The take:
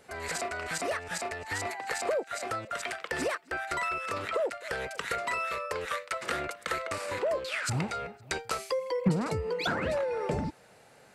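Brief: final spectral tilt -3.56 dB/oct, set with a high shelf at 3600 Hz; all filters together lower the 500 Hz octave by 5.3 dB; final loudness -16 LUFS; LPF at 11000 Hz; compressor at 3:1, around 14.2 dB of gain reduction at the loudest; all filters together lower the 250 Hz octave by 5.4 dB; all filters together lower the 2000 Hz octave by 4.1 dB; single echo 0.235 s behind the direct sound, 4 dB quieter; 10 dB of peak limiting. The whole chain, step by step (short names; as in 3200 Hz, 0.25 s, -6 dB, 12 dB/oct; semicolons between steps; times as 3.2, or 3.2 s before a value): LPF 11000 Hz; bell 250 Hz -7.5 dB; bell 500 Hz -4.5 dB; bell 2000 Hz -4 dB; high shelf 3600 Hz -3.5 dB; compressor 3:1, threshold -46 dBFS; limiter -36.5 dBFS; echo 0.235 s -4 dB; gain +29.5 dB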